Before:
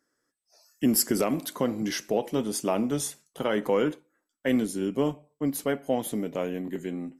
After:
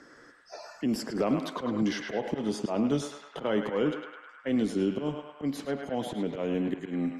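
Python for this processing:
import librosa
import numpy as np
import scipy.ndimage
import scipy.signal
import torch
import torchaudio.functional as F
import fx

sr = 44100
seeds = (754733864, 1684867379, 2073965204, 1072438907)

y = scipy.signal.sosfilt(scipy.signal.butter(2, 4000.0, 'lowpass', fs=sr, output='sos'), x)
y = fx.auto_swell(y, sr, attack_ms=206.0)
y = fx.dynamic_eq(y, sr, hz=1900.0, q=1.2, threshold_db=-53.0, ratio=4.0, max_db=-5)
y = fx.echo_banded(y, sr, ms=104, feedback_pct=61, hz=1500.0, wet_db=-3.5)
y = fx.band_squash(y, sr, depth_pct=70)
y = y * librosa.db_to_amplitude(3.0)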